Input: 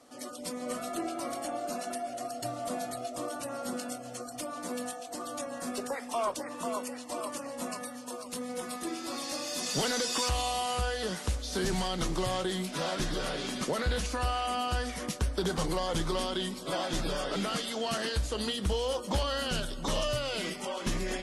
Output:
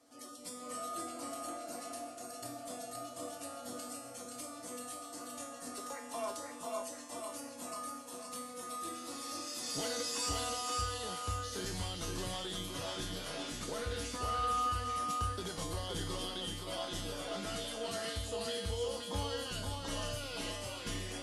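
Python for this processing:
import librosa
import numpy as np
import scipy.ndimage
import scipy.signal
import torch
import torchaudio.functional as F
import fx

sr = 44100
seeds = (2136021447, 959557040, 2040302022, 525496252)

y = fx.high_shelf(x, sr, hz=6100.0, db=5.5)
y = fx.comb_fb(y, sr, f0_hz=95.0, decay_s=0.71, harmonics='odd', damping=0.0, mix_pct=90)
y = y + 10.0 ** (-4.0 / 20.0) * np.pad(y, (int(522 * sr / 1000.0), 0))[:len(y)]
y = y * librosa.db_to_amplitude(5.5)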